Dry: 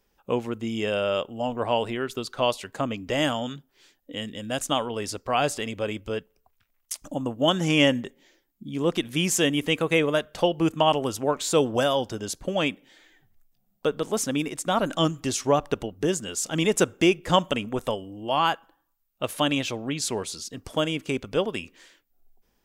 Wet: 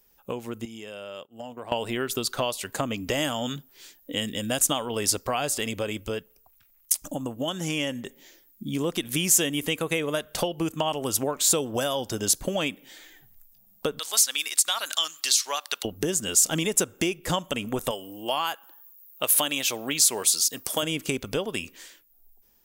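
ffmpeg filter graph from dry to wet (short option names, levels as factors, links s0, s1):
-filter_complex "[0:a]asettb=1/sr,asplit=3[s0][s1][s2];[s0]atrim=end=0.654[s3];[s1]atrim=start=0.65:end=1.72,asetpts=PTS-STARTPTS,afade=t=in:d=0.004:c=qsin,afade=t=out:st=1.066:d=0.004:c=qsin,agate=range=0.0224:threshold=0.0398:ratio=3:release=100:detection=peak,highpass=110,acompressor=threshold=0.0112:ratio=6:attack=3.2:release=140:knee=1:detection=peak[s4];[s2]atrim=start=1.716[s5];[s3][s4]acrossfade=d=0.004:c1=hsin:c2=qsin[s6];[s6][s5]acrossfade=d=0.004:c1=qsin:c2=hsin,asettb=1/sr,asplit=3[s7][s8][s9];[s7]atrim=end=13.994[s10];[s8]atrim=start=13.99:end=15.85,asetpts=PTS-STARTPTS,afade=t=in:d=0.004:c=qsin,afade=t=out:st=1.856:d=0.004:c=qsin,highpass=1400,equalizer=f=4300:t=o:w=0.57:g=10[s11];[s9]atrim=start=15.846[s12];[s10][s11]acrossfade=d=0.004:c1=hsin:c2=qsin[s13];[s13][s12]acrossfade=d=0.004:c1=qsin:c2=hsin,asettb=1/sr,asplit=3[s14][s15][s16];[s14]atrim=end=17.914[s17];[s15]atrim=start=17.91:end=20.83,asetpts=PTS-STARTPTS,afade=t=in:d=0.004:c=qsin,afade=t=out:st=2.916:d=0.004:c=qsin,lowpass=f=2600:p=1,aemphasis=mode=production:type=riaa[s18];[s16]atrim=start=20.826[s19];[s17][s18]acrossfade=d=0.004:c1=hsin:c2=qsin[s20];[s20][s19]acrossfade=d=0.004:c1=qsin:c2=hsin,acompressor=threshold=0.0355:ratio=6,aemphasis=mode=production:type=50fm,dynaudnorm=f=170:g=13:m=1.78"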